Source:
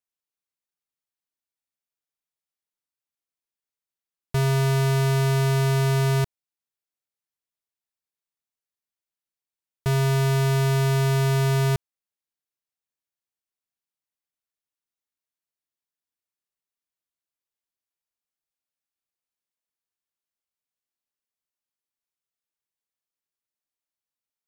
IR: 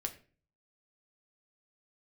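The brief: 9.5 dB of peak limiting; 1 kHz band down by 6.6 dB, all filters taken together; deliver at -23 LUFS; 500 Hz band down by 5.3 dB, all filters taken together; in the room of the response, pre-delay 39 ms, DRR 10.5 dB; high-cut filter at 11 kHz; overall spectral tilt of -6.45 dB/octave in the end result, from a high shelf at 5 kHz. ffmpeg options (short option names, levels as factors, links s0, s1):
-filter_complex "[0:a]lowpass=11000,equalizer=f=500:t=o:g=-6,equalizer=f=1000:t=o:g=-6,highshelf=f=5000:g=-7.5,alimiter=level_in=1.88:limit=0.0631:level=0:latency=1,volume=0.531,asplit=2[s0][s1];[1:a]atrim=start_sample=2205,adelay=39[s2];[s1][s2]afir=irnorm=-1:irlink=0,volume=0.299[s3];[s0][s3]amix=inputs=2:normalize=0,volume=3.55"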